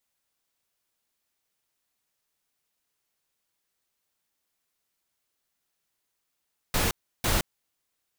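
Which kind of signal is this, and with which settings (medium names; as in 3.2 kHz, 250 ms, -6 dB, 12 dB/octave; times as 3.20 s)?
noise bursts pink, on 0.17 s, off 0.33 s, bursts 2, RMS -24.5 dBFS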